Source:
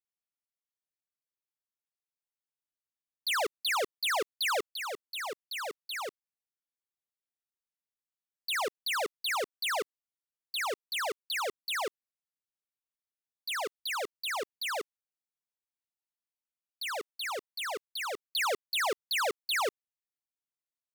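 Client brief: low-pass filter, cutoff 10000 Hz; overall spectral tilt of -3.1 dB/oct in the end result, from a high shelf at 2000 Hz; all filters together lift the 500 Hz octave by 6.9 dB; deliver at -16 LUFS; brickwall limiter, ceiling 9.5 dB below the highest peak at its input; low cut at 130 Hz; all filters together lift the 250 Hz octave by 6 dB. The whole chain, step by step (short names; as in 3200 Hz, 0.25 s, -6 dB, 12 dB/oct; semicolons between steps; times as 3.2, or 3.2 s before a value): HPF 130 Hz; LPF 10000 Hz; bell 250 Hz +5 dB; bell 500 Hz +6.5 dB; high shelf 2000 Hz +8 dB; gain +15 dB; limiter -10 dBFS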